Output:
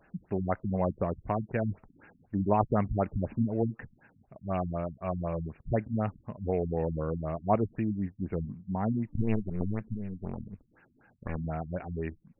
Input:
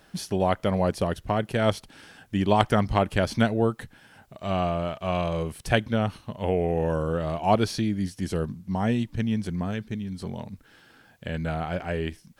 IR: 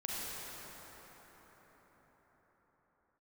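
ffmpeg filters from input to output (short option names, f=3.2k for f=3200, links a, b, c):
-filter_complex "[0:a]asettb=1/sr,asplit=3[a][b][c];[a]atrim=end=9.124[d];[b]atrim=start=9.12:end=11.36,asetpts=PTS-STARTPTS,afade=t=in:d=0.004:c=qsin,afade=t=out:st=2.236:d=0.004:c=qsin,aeval=exprs='0.188*(cos(1*acos(clip(val(0)/0.188,-1,1)))-cos(1*PI/2))+0.075*(cos(4*acos(clip(val(0)/0.188,-1,1)))-cos(4*PI/2))':c=same[e];[c]atrim=start=11.356[f];[d][e]acrossfade=d=0.004:c1=hsin:c2=qsin[g];[g][f]acrossfade=d=0.004:c1=qsin:c2=hsin,afftfilt=real='re*lt(b*sr/1024,250*pow(2900/250,0.5+0.5*sin(2*PI*4*pts/sr)))':imag='im*lt(b*sr/1024,250*pow(2900/250,0.5+0.5*sin(2*PI*4*pts/sr)))':win_size=1024:overlap=0.75,volume=-4.5dB"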